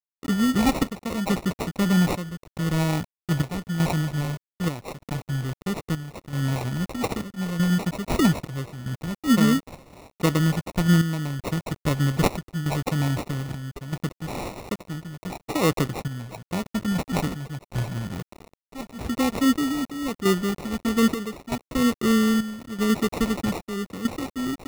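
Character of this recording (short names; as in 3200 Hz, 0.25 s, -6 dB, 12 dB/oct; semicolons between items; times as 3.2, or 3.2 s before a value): a quantiser's noise floor 6-bit, dither none; chopped level 0.79 Hz, depth 65%, duty 70%; phasing stages 4, 1.1 Hz, lowest notch 480–1400 Hz; aliases and images of a low sample rate 1600 Hz, jitter 0%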